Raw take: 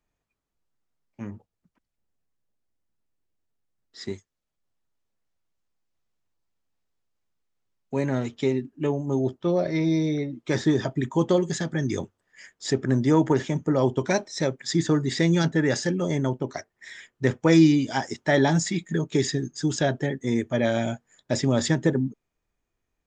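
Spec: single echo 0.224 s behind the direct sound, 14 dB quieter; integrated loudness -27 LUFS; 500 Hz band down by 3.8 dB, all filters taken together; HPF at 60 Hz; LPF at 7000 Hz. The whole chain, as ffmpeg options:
-af "highpass=60,lowpass=7k,equalizer=f=500:t=o:g=-5,aecho=1:1:224:0.2,volume=-1dB"

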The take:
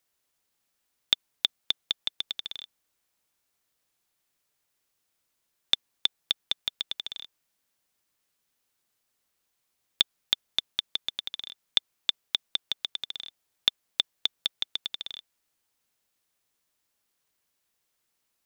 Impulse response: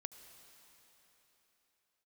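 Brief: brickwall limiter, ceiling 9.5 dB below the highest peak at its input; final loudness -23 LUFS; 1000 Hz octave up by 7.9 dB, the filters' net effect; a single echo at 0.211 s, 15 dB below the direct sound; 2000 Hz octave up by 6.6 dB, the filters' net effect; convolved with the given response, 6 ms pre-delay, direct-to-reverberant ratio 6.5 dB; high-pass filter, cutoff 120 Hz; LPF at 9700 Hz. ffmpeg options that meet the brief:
-filter_complex "[0:a]highpass=120,lowpass=9.7k,equalizer=f=1k:t=o:g=8,equalizer=f=2k:t=o:g=6.5,alimiter=limit=-10dB:level=0:latency=1,aecho=1:1:211:0.178,asplit=2[a][b];[1:a]atrim=start_sample=2205,adelay=6[c];[b][c]afir=irnorm=-1:irlink=0,volume=-2.5dB[d];[a][d]amix=inputs=2:normalize=0,volume=9dB"

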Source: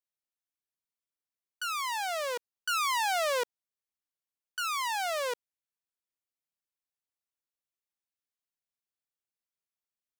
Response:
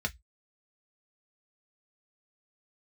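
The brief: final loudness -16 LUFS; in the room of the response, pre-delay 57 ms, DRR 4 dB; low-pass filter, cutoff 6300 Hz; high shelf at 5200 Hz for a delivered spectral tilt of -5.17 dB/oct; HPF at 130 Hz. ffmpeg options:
-filter_complex "[0:a]highpass=130,lowpass=6.3k,highshelf=f=5.2k:g=6.5,asplit=2[a][b];[1:a]atrim=start_sample=2205,adelay=57[c];[b][c]afir=irnorm=-1:irlink=0,volume=-9dB[d];[a][d]amix=inputs=2:normalize=0,volume=13.5dB"

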